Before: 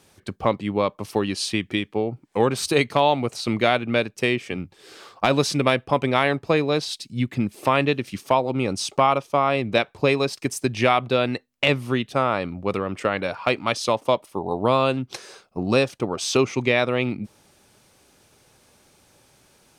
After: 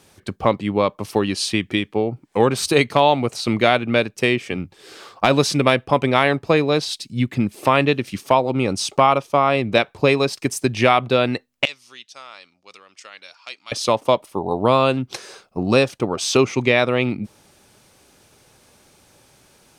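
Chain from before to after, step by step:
0:11.65–0:13.72: resonant band-pass 5,700 Hz, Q 2.3
level +3.5 dB

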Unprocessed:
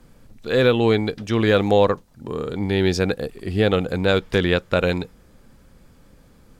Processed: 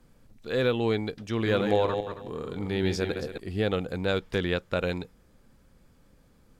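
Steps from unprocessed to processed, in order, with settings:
0:01.32–0:03.38: feedback delay that plays each chunk backwards 137 ms, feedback 43%, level −6 dB
level −8.5 dB

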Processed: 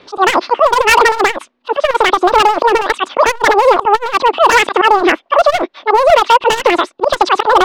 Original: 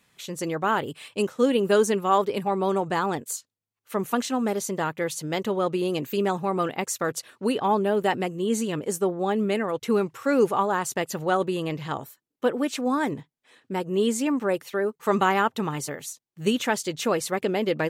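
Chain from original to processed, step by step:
hearing-aid frequency compression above 1,100 Hz 1.5 to 1
low-pass filter 1,400 Hz 24 dB per octave
volume swells 260 ms
hard clipping −25 dBFS, distortion −8 dB
rotating-speaker cabinet horn 0.8 Hz
wrong playback speed 33 rpm record played at 78 rpm
boost into a limiter +28.5 dB
saturating transformer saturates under 230 Hz

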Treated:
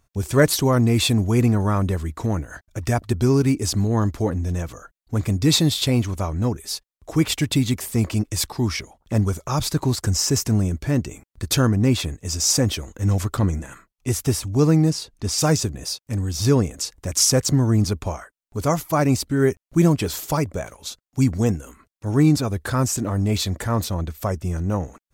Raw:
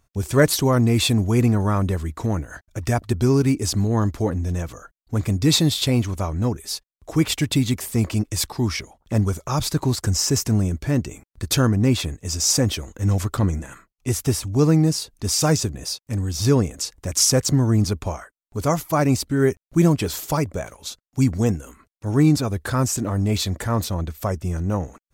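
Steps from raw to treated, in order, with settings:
0:14.90–0:15.38: high-shelf EQ 8,600 Hz −10.5 dB

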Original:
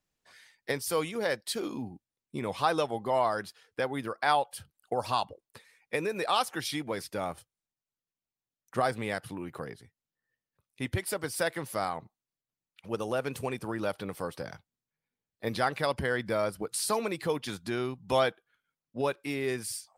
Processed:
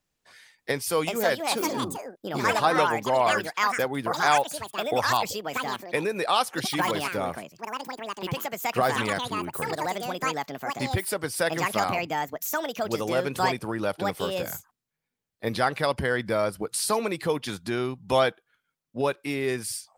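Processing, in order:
delay with pitch and tempo change per echo 585 ms, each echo +6 semitones, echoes 2
level +4 dB

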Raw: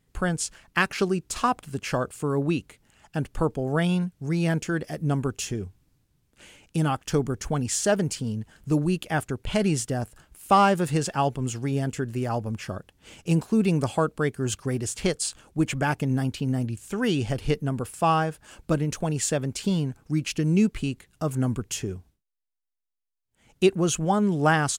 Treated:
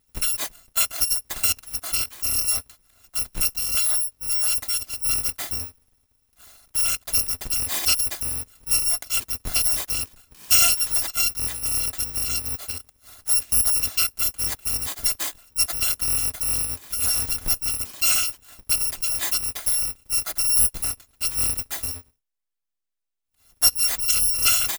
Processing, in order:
samples in bit-reversed order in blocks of 256 samples
level +1.5 dB

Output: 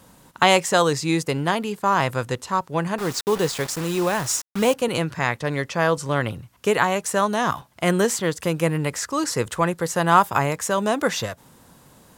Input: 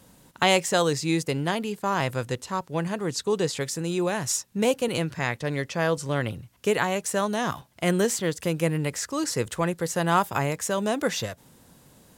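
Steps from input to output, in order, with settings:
0:02.98–0:04.74: bit-depth reduction 6 bits, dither none
parametric band 1,100 Hz +5.5 dB 1.1 octaves
level +2.5 dB

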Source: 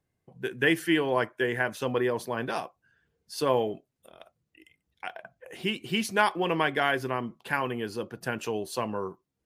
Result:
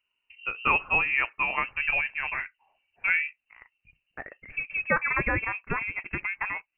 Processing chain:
gliding playback speed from 90% → 189%
voice inversion scrambler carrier 2,900 Hz
low-shelf EQ 73 Hz +8 dB

